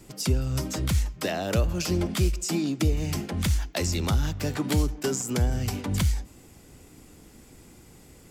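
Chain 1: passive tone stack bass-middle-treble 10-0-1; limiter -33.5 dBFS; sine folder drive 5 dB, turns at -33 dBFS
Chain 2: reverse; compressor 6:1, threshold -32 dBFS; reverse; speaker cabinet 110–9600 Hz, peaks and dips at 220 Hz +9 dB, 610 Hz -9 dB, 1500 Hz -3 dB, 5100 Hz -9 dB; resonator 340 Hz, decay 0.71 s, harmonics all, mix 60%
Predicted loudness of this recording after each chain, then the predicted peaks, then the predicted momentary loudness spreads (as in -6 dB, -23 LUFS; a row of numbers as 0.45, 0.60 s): -39.0, -45.0 LUFS; -32.5, -29.5 dBFS; 18, 15 LU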